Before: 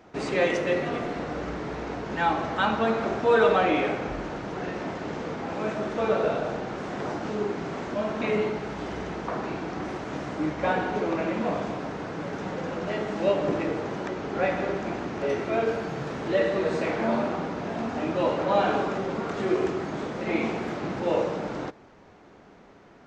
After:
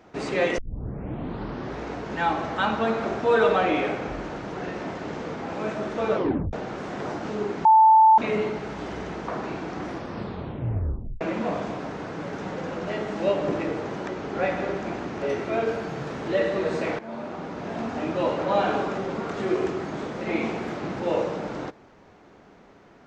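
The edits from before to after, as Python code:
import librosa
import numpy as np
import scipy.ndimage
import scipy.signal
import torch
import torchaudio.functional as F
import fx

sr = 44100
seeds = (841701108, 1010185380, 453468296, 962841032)

y = fx.edit(x, sr, fx.tape_start(start_s=0.58, length_s=1.24),
    fx.tape_stop(start_s=6.15, length_s=0.38),
    fx.bleep(start_s=7.65, length_s=0.53, hz=881.0, db=-11.0),
    fx.tape_stop(start_s=9.83, length_s=1.38),
    fx.fade_in_from(start_s=16.99, length_s=0.79, floor_db=-16.5), tone=tone)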